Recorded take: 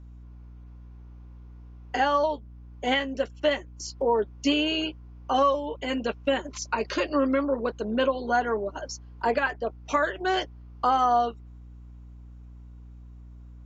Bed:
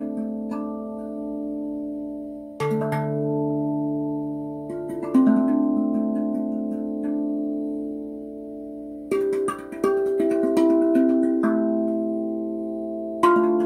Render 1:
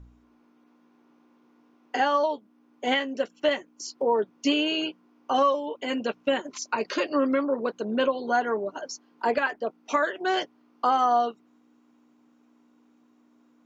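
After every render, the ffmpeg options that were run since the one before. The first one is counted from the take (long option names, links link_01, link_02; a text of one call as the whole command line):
ffmpeg -i in.wav -af "bandreject=frequency=60:width_type=h:width=4,bandreject=frequency=120:width_type=h:width=4,bandreject=frequency=180:width_type=h:width=4" out.wav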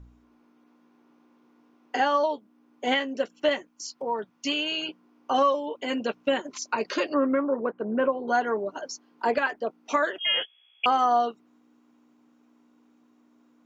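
ffmpeg -i in.wav -filter_complex "[0:a]asettb=1/sr,asplit=3[link_01][link_02][link_03];[link_01]atrim=end=3.674[link_04];[link_02]atrim=start=3.67:end=4.89,asetpts=PTS-STARTPTS,afade=type=in:duration=0.004:curve=qsin,afade=type=out:start_time=1.216:duration=0.004:curve=qsin,equalizer=frequency=380:width_type=o:width=1.6:gain=-9.5[link_05];[link_03]atrim=start=4.886[link_06];[link_04][link_05]acrossfade=duration=0.004:curve1=hsin:curve2=qsin[link_07];[link_07][link_06]acrossfade=duration=0.004:curve1=qsin:curve2=hsin,asettb=1/sr,asplit=3[link_08][link_09][link_10];[link_08]atrim=end=7.144[link_11];[link_09]atrim=start=7.14:end=8.28,asetpts=PTS-STARTPTS,afade=type=in:duration=0.004:curve=qsin,afade=type=out:start_time=1.136:duration=0.004:curve=qsin,lowpass=frequency=2000:width=0.5412,lowpass=frequency=2000:width=1.3066[link_12];[link_10]atrim=start=8.276[link_13];[link_11][link_12]acrossfade=duration=0.004:curve1=hsin:curve2=qsin[link_14];[link_14][link_13]acrossfade=duration=0.004:curve1=qsin:curve2=hsin,asettb=1/sr,asplit=3[link_15][link_16][link_17];[link_15]atrim=end=10.184[link_18];[link_16]atrim=start=10.18:end=10.86,asetpts=PTS-STARTPTS,afade=type=in:duration=0.004:curve=qsin,afade=type=out:start_time=0.676:duration=0.004:curve=qsin,lowpass=frequency=3100:width_type=q:width=0.5098,lowpass=frequency=3100:width_type=q:width=0.6013,lowpass=frequency=3100:width_type=q:width=0.9,lowpass=frequency=3100:width_type=q:width=2.563,afreqshift=-3600[link_19];[link_17]atrim=start=10.856[link_20];[link_18][link_19]acrossfade=duration=0.004:curve1=hsin:curve2=qsin[link_21];[link_21][link_20]acrossfade=duration=0.004:curve1=qsin:curve2=hsin" out.wav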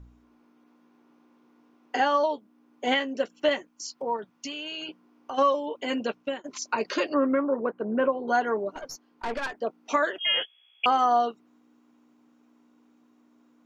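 ffmpeg -i in.wav -filter_complex "[0:a]asplit=3[link_01][link_02][link_03];[link_01]afade=type=out:start_time=4.16:duration=0.02[link_04];[link_02]acompressor=threshold=-32dB:ratio=6:attack=3.2:release=140:knee=1:detection=peak,afade=type=in:start_time=4.16:duration=0.02,afade=type=out:start_time=5.37:duration=0.02[link_05];[link_03]afade=type=in:start_time=5.37:duration=0.02[link_06];[link_04][link_05][link_06]amix=inputs=3:normalize=0,asettb=1/sr,asplit=3[link_07][link_08][link_09];[link_07]atrim=end=8.754[link_10];[link_08]atrim=start=8.75:end=9.54,asetpts=PTS-STARTPTS,afade=type=in:duration=0.004:curve=qsin,afade=type=out:start_time=0.786:duration=0.004:curve=qsin,aeval=exprs='(tanh(22.4*val(0)+0.6)-tanh(0.6))/22.4':channel_layout=same[link_11];[link_09]atrim=start=9.536[link_12];[link_10][link_11]acrossfade=duration=0.004:curve1=hsin:curve2=qsin[link_13];[link_13][link_12]acrossfade=duration=0.004:curve1=qsin:curve2=hsin,asplit=2[link_14][link_15];[link_14]atrim=end=6.44,asetpts=PTS-STARTPTS,afade=type=out:start_time=5.92:duration=0.52:curve=qsin:silence=0.112202[link_16];[link_15]atrim=start=6.44,asetpts=PTS-STARTPTS,afade=type=in:duration=0.004:curve=hsin:silence=0.112202[link_17];[link_16][link_17]concat=n=2:v=0:a=1" out.wav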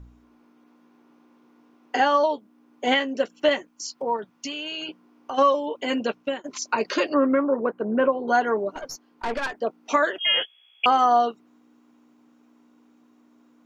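ffmpeg -i in.wav -af "volume=3.5dB" out.wav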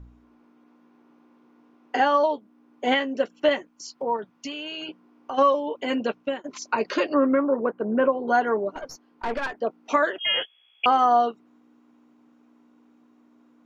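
ffmpeg -i in.wav -af "highshelf=frequency=4400:gain=-9" out.wav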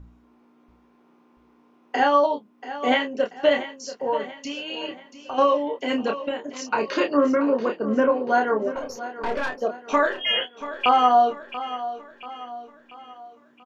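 ffmpeg -i in.wav -filter_complex "[0:a]asplit=2[link_01][link_02];[link_02]adelay=28,volume=-5dB[link_03];[link_01][link_03]amix=inputs=2:normalize=0,aecho=1:1:685|1370|2055|2740|3425:0.211|0.0993|0.0467|0.0219|0.0103" out.wav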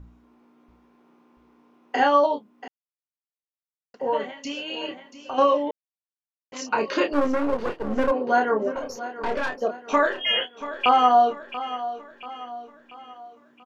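ffmpeg -i in.wav -filter_complex "[0:a]asplit=3[link_01][link_02][link_03];[link_01]afade=type=out:start_time=7.12:duration=0.02[link_04];[link_02]aeval=exprs='if(lt(val(0),0),0.251*val(0),val(0))':channel_layout=same,afade=type=in:start_time=7.12:duration=0.02,afade=type=out:start_time=8.1:duration=0.02[link_05];[link_03]afade=type=in:start_time=8.1:duration=0.02[link_06];[link_04][link_05][link_06]amix=inputs=3:normalize=0,asplit=5[link_07][link_08][link_09][link_10][link_11];[link_07]atrim=end=2.68,asetpts=PTS-STARTPTS,afade=type=out:start_time=2.676:duration=0.004:curve=hsin[link_12];[link_08]atrim=start=2.68:end=3.94,asetpts=PTS-STARTPTS,volume=0[link_13];[link_09]atrim=start=3.94:end=5.71,asetpts=PTS-STARTPTS,afade=type=in:duration=0.004:curve=hsin,afade=type=out:start_time=1.766:duration=0.004:curve=hsin[link_14];[link_10]atrim=start=5.71:end=6.52,asetpts=PTS-STARTPTS,volume=0[link_15];[link_11]atrim=start=6.52,asetpts=PTS-STARTPTS,afade=type=in:duration=0.004:curve=hsin[link_16];[link_12][link_13][link_14][link_15][link_16]concat=n=5:v=0:a=1" out.wav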